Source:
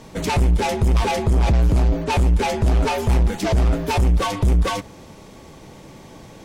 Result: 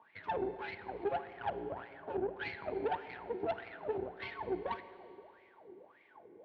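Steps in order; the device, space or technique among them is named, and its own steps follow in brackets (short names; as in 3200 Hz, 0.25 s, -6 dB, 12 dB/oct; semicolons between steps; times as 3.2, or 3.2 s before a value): wah-wah guitar rig (wah 1.7 Hz 360–2200 Hz, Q 15; tube stage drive 35 dB, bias 0.75; speaker cabinet 93–3500 Hz, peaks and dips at 95 Hz +4 dB, 150 Hz -5 dB, 550 Hz -4 dB, 1200 Hz -8 dB, 2100 Hz -7 dB); Schroeder reverb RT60 2.5 s, combs from 32 ms, DRR 12 dB; gain +7.5 dB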